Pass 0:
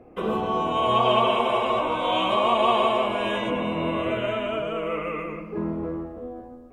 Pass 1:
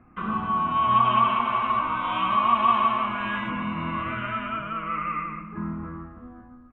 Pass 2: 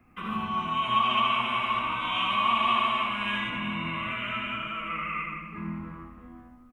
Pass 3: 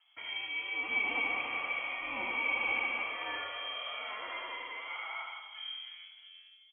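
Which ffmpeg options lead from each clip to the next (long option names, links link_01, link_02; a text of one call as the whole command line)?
ffmpeg -i in.wav -af "firequalizer=gain_entry='entry(220,0);entry(450,-21);entry(1200,7);entry(3700,-12);entry(6900,-21);entry(9900,-17)':delay=0.05:min_phase=1" out.wav
ffmpeg -i in.wav -filter_complex "[0:a]acrossover=split=240|930[link_01][link_02][link_03];[link_03]aexciter=amount=3.6:drive=6:freq=2100[link_04];[link_01][link_02][link_04]amix=inputs=3:normalize=0,aecho=1:1:78|380:0.596|0.224,volume=-6dB" out.wav
ffmpeg -i in.wav -af "lowpass=frequency=2900:width_type=q:width=0.5098,lowpass=frequency=2900:width_type=q:width=0.6013,lowpass=frequency=2900:width_type=q:width=0.9,lowpass=frequency=2900:width_type=q:width=2.563,afreqshift=-3400,volume=-8dB" out.wav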